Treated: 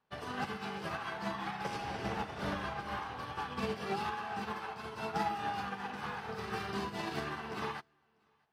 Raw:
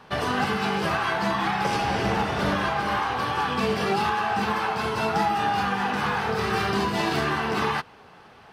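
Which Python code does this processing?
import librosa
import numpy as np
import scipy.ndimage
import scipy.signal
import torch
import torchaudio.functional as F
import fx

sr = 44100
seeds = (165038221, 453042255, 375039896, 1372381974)

y = fx.low_shelf(x, sr, hz=82.0, db=8.5, at=(2.56, 3.67))
y = y + 10.0 ** (-16.5 / 20.0) * np.pad(y, (int(645 * sr / 1000.0), 0))[:len(y)]
y = fx.upward_expand(y, sr, threshold_db=-36.0, expansion=2.5)
y = F.gain(torch.from_numpy(y), -9.0).numpy()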